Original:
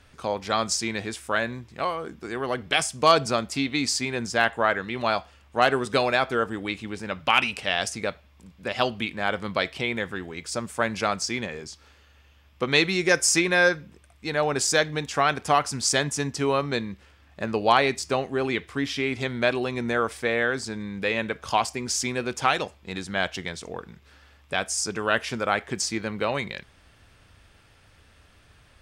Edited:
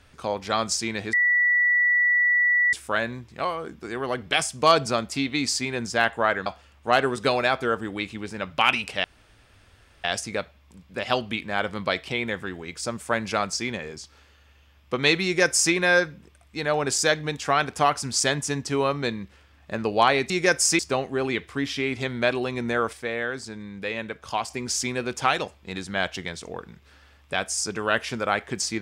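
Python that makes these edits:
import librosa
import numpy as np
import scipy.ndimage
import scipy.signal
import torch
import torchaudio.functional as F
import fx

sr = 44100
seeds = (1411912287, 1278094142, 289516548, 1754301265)

y = fx.edit(x, sr, fx.insert_tone(at_s=1.13, length_s=1.6, hz=1950.0, db=-17.0),
    fx.cut(start_s=4.86, length_s=0.29),
    fx.insert_room_tone(at_s=7.73, length_s=1.0),
    fx.duplicate(start_s=12.93, length_s=0.49, to_s=17.99),
    fx.clip_gain(start_s=20.13, length_s=1.57, db=-4.5), tone=tone)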